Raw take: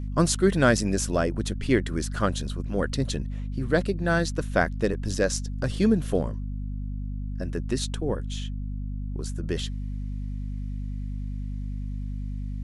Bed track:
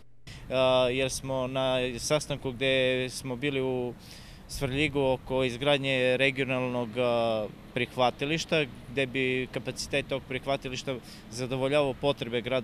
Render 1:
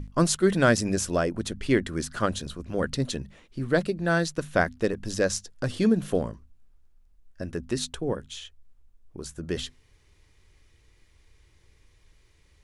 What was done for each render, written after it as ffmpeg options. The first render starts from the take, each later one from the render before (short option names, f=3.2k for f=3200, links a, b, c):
-af "bandreject=f=50:t=h:w=6,bandreject=f=100:t=h:w=6,bandreject=f=150:t=h:w=6,bandreject=f=200:t=h:w=6,bandreject=f=250:t=h:w=6"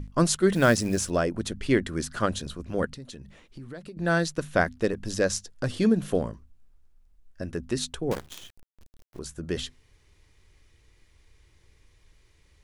-filter_complex "[0:a]asettb=1/sr,asplit=3[a][b][c];[a]atrim=end=0.534[d];[b]atrim=start=0.53:end=1.1,asetpts=PTS-STARTPTS,afade=t=in:d=0.004:c=qsin,afade=t=out:st=0.566:d=0.004:c=qsin,acrusher=bits=6:mode=log:mix=0:aa=0.000001[e];[c]atrim=start=1.096[f];[d][e]acrossfade=d=0.004:c1=hsin:c2=qsin[g];[g][f]acrossfade=d=0.004:c1=qsin:c2=hsin,asettb=1/sr,asplit=3[h][i][j];[h]atrim=end=2.854[k];[i]atrim=start=2.85:end=3.97,asetpts=PTS-STARTPTS,afade=t=in:d=0.004:c=qsin,afade=t=out:st=1.116:d=0.004:c=qsin,acompressor=threshold=-40dB:ratio=4:attack=3.2:release=140:knee=1:detection=peak[l];[j]atrim=start=3.966[m];[k][l]acrossfade=d=0.004:c1=hsin:c2=qsin[n];[n][m]acrossfade=d=0.004:c1=qsin:c2=hsin,asettb=1/sr,asplit=3[o][p][q];[o]atrim=end=8.114[r];[p]atrim=start=8.11:end=9.19,asetpts=PTS-STARTPTS,afade=t=in:d=0.004:c=qsin,afade=t=out:st=1.076:d=0.004:c=qsin,acrusher=bits=6:dc=4:mix=0:aa=0.000001[s];[q]atrim=start=9.186[t];[r][s]acrossfade=d=0.004:c1=hsin:c2=qsin[u];[u][t]acrossfade=d=0.004:c1=qsin:c2=hsin"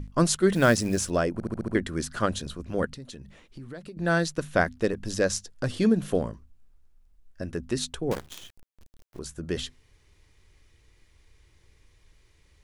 -filter_complex "[0:a]asplit=7[a][b][c][d][e][f][g];[a]atrim=end=1.402[h];[b]atrim=start=1.328:end=1.402[i];[c]atrim=start=1.328:end=1.402[j];[d]atrim=start=1.328:end=1.402[k];[e]atrim=start=1.328:end=1.402[l];[f]atrim=start=1.328:end=1.402[m];[g]atrim=start=1.748[n];[h][i]acrossfade=d=0.004:c1=hsin:c2=hsin[o];[o][j]acrossfade=d=0.004:c1=hsin:c2=hsin[p];[p][k]acrossfade=d=0.004:c1=hsin:c2=hsin[q];[q][l]acrossfade=d=0.004:c1=hsin:c2=hsin[r];[r][m]acrossfade=d=0.004:c1=hsin:c2=hsin[s];[s][n]acrossfade=d=0.004:c1=hsin:c2=hsin"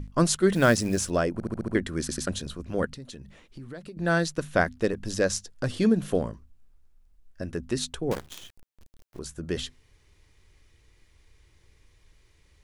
-filter_complex "[0:a]asplit=4[a][b][c][d];[a]atrim=end=2.092[e];[b]atrim=start=1.998:end=2.092[f];[c]atrim=start=1.998:end=2.092[g];[d]atrim=start=2.268[h];[e][f]acrossfade=d=0.004:c1=hsin:c2=hsin[i];[i][g]acrossfade=d=0.004:c1=hsin:c2=hsin[j];[j][h]acrossfade=d=0.004:c1=hsin:c2=hsin"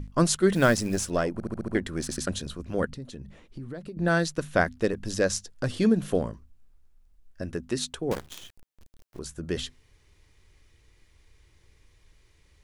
-filter_complex "[0:a]asettb=1/sr,asplit=3[a][b][c];[a]atrim=end=0.674[d];[b]atrim=start=0.67:end=2.18,asetpts=PTS-STARTPTS,afade=t=in:d=0.004:c=qsin,afade=t=out:st=1.506:d=0.004:c=qsin,aeval=exprs='if(lt(val(0),0),0.708*val(0),val(0))':c=same[e];[c]atrim=start=2.176[f];[d][e]acrossfade=d=0.004:c1=hsin:c2=qsin[g];[g][f]acrossfade=d=0.004:c1=qsin:c2=hsin,asettb=1/sr,asplit=3[h][i][j];[h]atrim=end=2.884[k];[i]atrim=start=2.88:end=4.08,asetpts=PTS-STARTPTS,afade=t=in:d=0.004:c=qsin,afade=t=out:st=1.196:d=0.004:c=qsin,tiltshelf=f=970:g=3.5[l];[j]atrim=start=4.076[m];[k][l]acrossfade=d=0.004:c1=hsin:c2=qsin[n];[n][m]acrossfade=d=0.004:c1=qsin:c2=hsin,asettb=1/sr,asplit=3[o][p][q];[o]atrim=end=7.574[r];[p]atrim=start=7.57:end=8.11,asetpts=PTS-STARTPTS,afade=t=in:d=0.004:c=qsin,afade=t=out:st=0.536:d=0.004:c=qsin,lowshelf=f=76:g=-10.5[s];[q]atrim=start=8.106[t];[r][s]acrossfade=d=0.004:c1=hsin:c2=qsin[u];[u][t]acrossfade=d=0.004:c1=qsin:c2=hsin"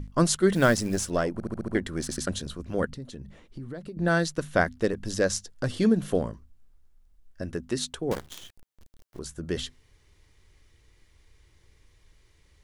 -af "bandreject=f=2.5k:w=19"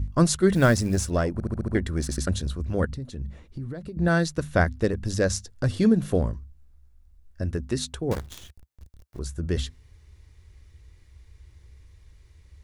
-af "equalizer=f=69:t=o:w=1.6:g=14.5,bandreject=f=3.1k:w=16"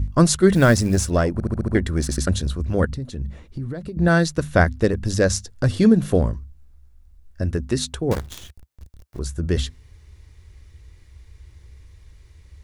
-af "volume=5dB,alimiter=limit=-3dB:level=0:latency=1"